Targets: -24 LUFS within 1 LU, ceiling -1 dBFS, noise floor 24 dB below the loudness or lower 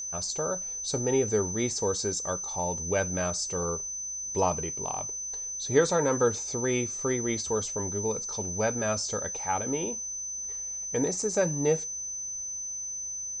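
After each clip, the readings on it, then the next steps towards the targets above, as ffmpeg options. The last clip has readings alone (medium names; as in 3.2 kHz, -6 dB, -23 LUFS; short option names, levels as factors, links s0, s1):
steady tone 6.1 kHz; tone level -33 dBFS; loudness -29.0 LUFS; peak level -9.0 dBFS; loudness target -24.0 LUFS
-> -af "bandreject=f=6100:w=30"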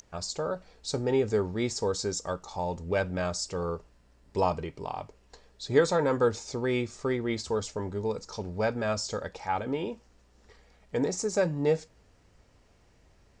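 steady tone not found; loudness -30.5 LUFS; peak level -9.5 dBFS; loudness target -24.0 LUFS
-> -af "volume=2.11"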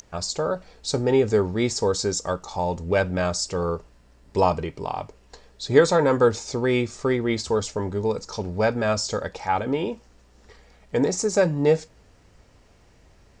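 loudness -24.0 LUFS; peak level -3.0 dBFS; noise floor -56 dBFS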